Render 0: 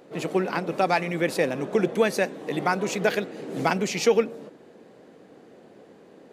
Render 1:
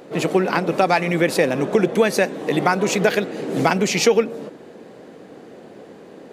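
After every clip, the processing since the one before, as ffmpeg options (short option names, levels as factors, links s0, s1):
-af "acompressor=threshold=0.0631:ratio=2,volume=2.82"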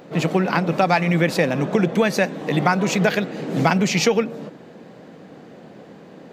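-af "equalizer=f=160:t=o:w=0.67:g=6,equalizer=f=400:t=o:w=0.67:g=-5,equalizer=f=10000:t=o:w=0.67:g=-9"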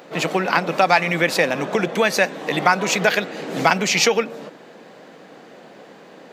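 -af "highpass=f=710:p=1,volume=1.78"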